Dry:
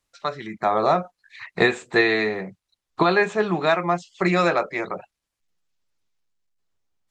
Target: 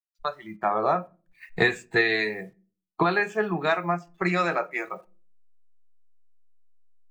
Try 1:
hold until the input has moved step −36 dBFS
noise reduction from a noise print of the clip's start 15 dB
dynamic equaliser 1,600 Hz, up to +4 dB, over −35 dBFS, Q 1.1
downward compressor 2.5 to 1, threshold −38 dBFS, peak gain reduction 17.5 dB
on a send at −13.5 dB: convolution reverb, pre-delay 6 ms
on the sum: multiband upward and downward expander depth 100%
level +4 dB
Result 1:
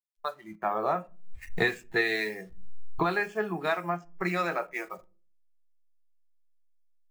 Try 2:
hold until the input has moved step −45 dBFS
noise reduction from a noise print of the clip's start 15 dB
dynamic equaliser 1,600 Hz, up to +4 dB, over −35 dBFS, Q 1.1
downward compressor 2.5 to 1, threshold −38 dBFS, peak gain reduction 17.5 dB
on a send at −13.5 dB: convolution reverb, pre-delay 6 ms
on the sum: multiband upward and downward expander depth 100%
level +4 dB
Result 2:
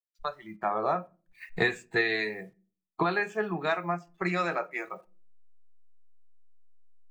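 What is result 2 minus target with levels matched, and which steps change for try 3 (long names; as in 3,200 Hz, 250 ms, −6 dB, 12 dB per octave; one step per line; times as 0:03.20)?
downward compressor: peak gain reduction +4.5 dB
change: downward compressor 2.5 to 1, threshold −30.5 dBFS, peak gain reduction 13 dB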